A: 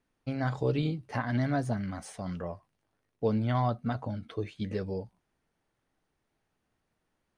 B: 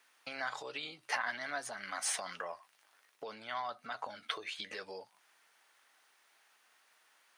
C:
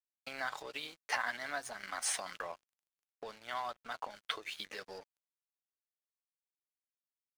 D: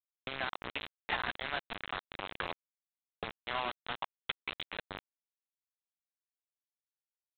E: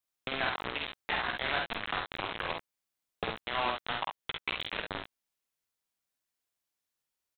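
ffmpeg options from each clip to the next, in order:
ffmpeg -i in.wav -af "alimiter=level_in=3dB:limit=-24dB:level=0:latency=1:release=165,volume=-3dB,acompressor=threshold=-45dB:ratio=2.5,highpass=1200,volume=17dB" out.wav
ffmpeg -i in.wav -af "aeval=exprs='sgn(val(0))*max(abs(val(0))-0.00237,0)':channel_layout=same,volume=1dB" out.wav
ffmpeg -i in.wav -af "acompressor=threshold=-49dB:ratio=2,aeval=exprs='val(0)+0.000447*(sin(2*PI*60*n/s)+sin(2*PI*2*60*n/s)/2+sin(2*PI*3*60*n/s)/3+sin(2*PI*4*60*n/s)/4+sin(2*PI*5*60*n/s)/5)':channel_layout=same,aresample=8000,acrusher=bits=6:mix=0:aa=0.000001,aresample=44100,volume=9.5dB" out.wav
ffmpeg -i in.wav -filter_complex "[0:a]alimiter=level_in=3.5dB:limit=-24dB:level=0:latency=1:release=248,volume=-3.5dB,asplit=2[link_01][link_02];[link_02]aecho=0:1:49|67:0.596|0.447[link_03];[link_01][link_03]amix=inputs=2:normalize=0,volume=7dB" out.wav

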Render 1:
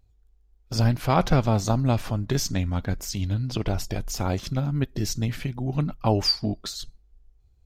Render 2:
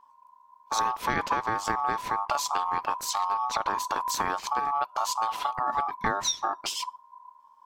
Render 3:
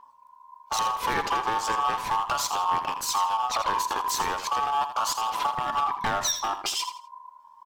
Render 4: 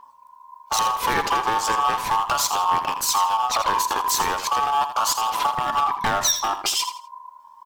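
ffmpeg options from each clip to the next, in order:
ffmpeg -i in.wav -af "aeval=exprs='val(0)*sin(2*PI*1000*n/s)':channel_layout=same,acompressor=threshold=-29dB:ratio=6,volume=5.5dB" out.wav
ffmpeg -i in.wav -af "volume=24dB,asoftclip=hard,volume=-24dB,aphaser=in_gain=1:out_gain=1:delay=2.6:decay=0.33:speed=0.37:type=triangular,aecho=1:1:82|164|246:0.299|0.0836|0.0234,volume=3dB" out.wav
ffmpeg -i in.wav -af "highshelf=frequency=8000:gain=6,volume=4.5dB" out.wav

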